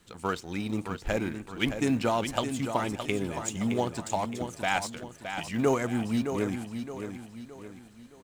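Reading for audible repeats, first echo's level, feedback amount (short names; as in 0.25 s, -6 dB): 4, -8.0 dB, 42%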